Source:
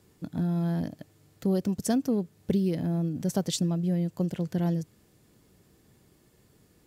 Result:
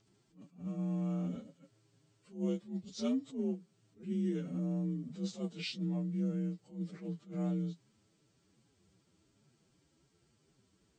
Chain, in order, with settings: inharmonic rescaling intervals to 86%; time stretch by phase-locked vocoder 1.6×; attack slew limiter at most 190 dB/s; gain -7 dB

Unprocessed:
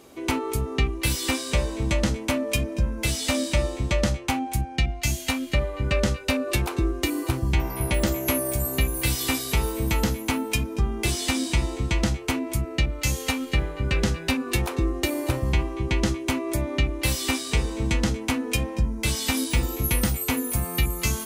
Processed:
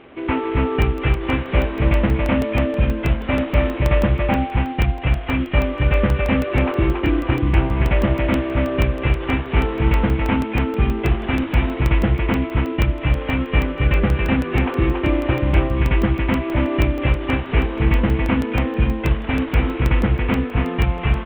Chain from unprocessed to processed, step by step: CVSD 16 kbps; echo 0.279 s -3 dB; crackling interface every 0.16 s, samples 64, zero, from 0.82; gain +6 dB

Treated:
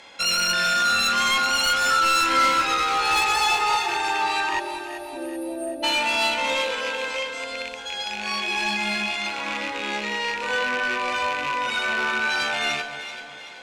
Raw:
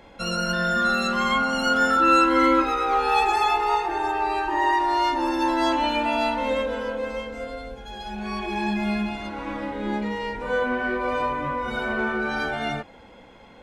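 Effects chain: rattling part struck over -36 dBFS, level -26 dBFS; weighting filter ITU-R 468; spectral delete 4.59–5.83, 700–8600 Hz; low shelf 170 Hz +6 dB; soft clip -19.5 dBFS, distortion -10 dB; on a send: echo with dull and thin repeats by turns 0.192 s, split 1100 Hz, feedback 67%, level -7 dB; on the sum: gain +2 dB

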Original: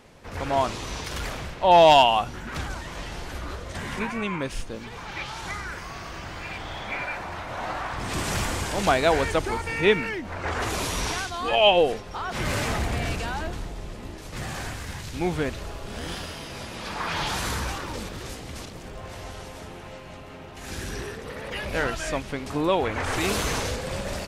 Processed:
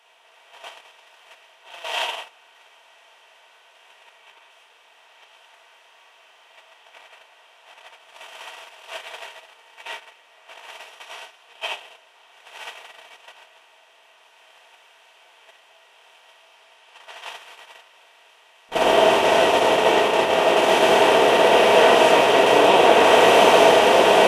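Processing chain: per-bin compression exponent 0.2; HPF 1300 Hz 12 dB/oct, from 18.69 s 250 Hz; shoebox room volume 230 m³, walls mixed, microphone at 1.7 m; gate -8 dBFS, range -31 dB; gain -8.5 dB

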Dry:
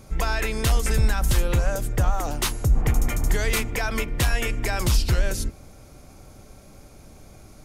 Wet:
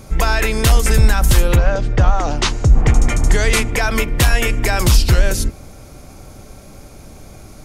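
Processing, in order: 1.55–3.8 LPF 4400 Hz -> 12000 Hz 24 dB/oct; gain +8.5 dB

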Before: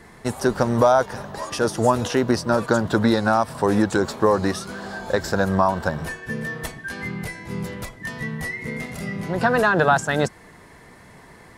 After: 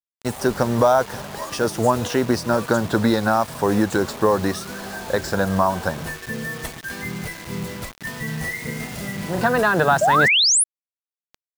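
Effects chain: 5.14–6.65 de-hum 76.48 Hz, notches 13; bit-crush 6-bit; 8.23–9.43 doubler 39 ms -6 dB; 10.01–10.64 painted sound rise 570–11000 Hz -16 dBFS

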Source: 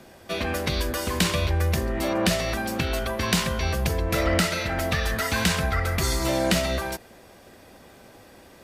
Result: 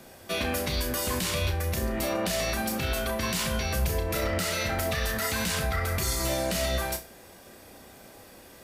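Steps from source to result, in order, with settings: high shelf 7400 Hz +10 dB; limiter -17.5 dBFS, peak gain reduction 12 dB; flutter echo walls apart 5.5 m, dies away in 0.26 s; gain -2 dB

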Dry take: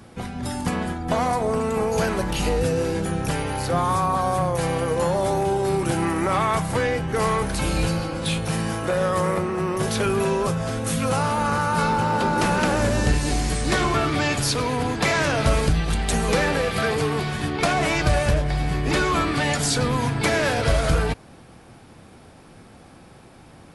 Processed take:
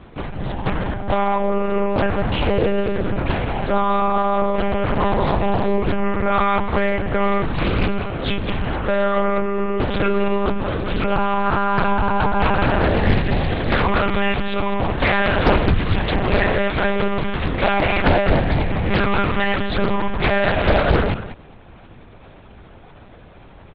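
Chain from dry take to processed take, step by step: 4.84–5.65 spectral limiter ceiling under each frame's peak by 12 dB; echo 0.204 s -13 dB; monotone LPC vocoder at 8 kHz 200 Hz; Doppler distortion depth 0.66 ms; gain +4 dB

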